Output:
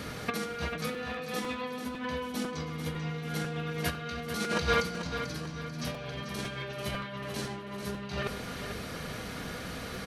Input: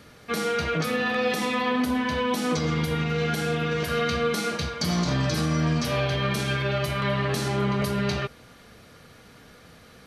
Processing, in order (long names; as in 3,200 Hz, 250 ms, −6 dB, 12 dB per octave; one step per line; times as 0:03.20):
compressor whose output falls as the input rises −33 dBFS, ratio −0.5
repeating echo 441 ms, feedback 44%, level −9 dB
on a send at −9 dB: convolution reverb RT60 0.75 s, pre-delay 3 ms
on the sum: regular buffer underruns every 0.50 s, samples 256, repeat, from 0:00.94